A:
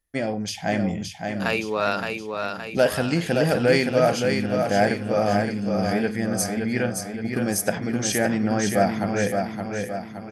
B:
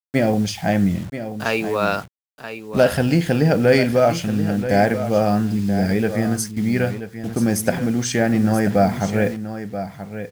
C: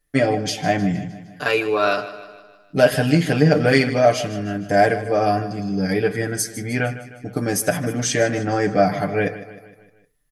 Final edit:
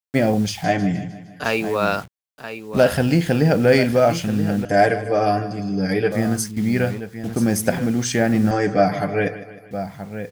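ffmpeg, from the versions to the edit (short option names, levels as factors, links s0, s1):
-filter_complex "[2:a]asplit=3[s0][s1][s2];[1:a]asplit=4[s3][s4][s5][s6];[s3]atrim=end=0.642[s7];[s0]atrim=start=0.638:end=1.442[s8];[s4]atrim=start=1.438:end=4.652[s9];[s1]atrim=start=4.648:end=6.122[s10];[s5]atrim=start=6.118:end=8.512[s11];[s2]atrim=start=8.508:end=9.712[s12];[s6]atrim=start=9.708[s13];[s7][s8]acrossfade=d=0.004:c1=hsin:c2=hsin[s14];[s14][s9]acrossfade=d=0.004:c1=hsin:c2=hsin[s15];[s15][s10]acrossfade=d=0.004:c1=hsin:c2=hsin[s16];[s16][s11]acrossfade=d=0.004:c1=hsin:c2=hsin[s17];[s17][s12]acrossfade=d=0.004:c1=hsin:c2=hsin[s18];[s18][s13]acrossfade=d=0.004:c1=hsin:c2=hsin"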